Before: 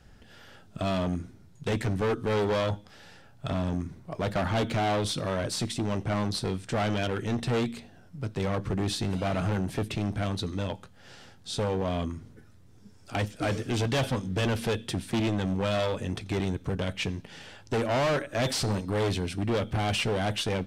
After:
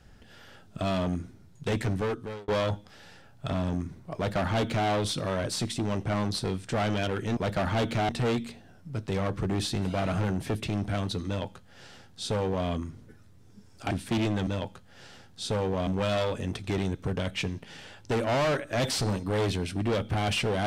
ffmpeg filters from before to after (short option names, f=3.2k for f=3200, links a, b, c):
-filter_complex "[0:a]asplit=7[a][b][c][d][e][f][g];[a]atrim=end=2.48,asetpts=PTS-STARTPTS,afade=t=out:st=1.93:d=0.55[h];[b]atrim=start=2.48:end=7.372,asetpts=PTS-STARTPTS,afade=t=in:d=0.004:c=hsin[i];[c]atrim=start=4.158:end=4.882[j];[d]atrim=start=7.368:end=13.192[k];[e]atrim=start=14.928:end=15.492[l];[f]atrim=start=10.548:end=11.952[m];[g]atrim=start=15.488[n];[h][i]concat=n=2:v=0:a=1[o];[o][j]acrossfade=d=0.004:c1=hsin:c2=hsin[p];[p][k]acrossfade=d=0.004:c1=hsin:c2=hsin[q];[q][l]acrossfade=d=0.004:c1=hsin:c2=hsin[r];[r][m]acrossfade=d=0.004:c1=hsin:c2=hsin[s];[s][n]acrossfade=d=0.004:c1=hsin:c2=hsin"